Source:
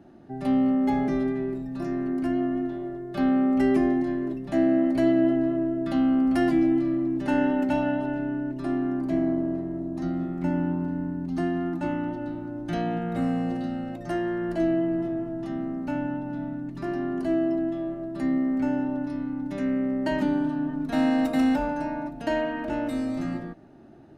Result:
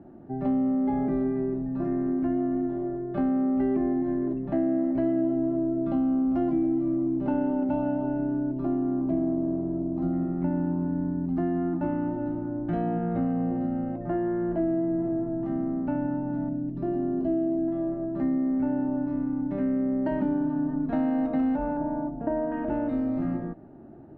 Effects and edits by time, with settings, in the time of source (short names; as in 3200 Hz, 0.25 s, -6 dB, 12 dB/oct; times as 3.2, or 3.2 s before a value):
5.21–10.13 bell 1800 Hz -12 dB 0.31 oct
13.33–15.46 bell 4800 Hz -8 dB 1.5 oct
16.49–17.68 band shelf 1400 Hz -8.5 dB
21.77–22.52 LPF 1200 Hz
whole clip: compressor 3:1, threshold -27 dBFS; Bessel low-pass 930 Hz, order 2; gain +3.5 dB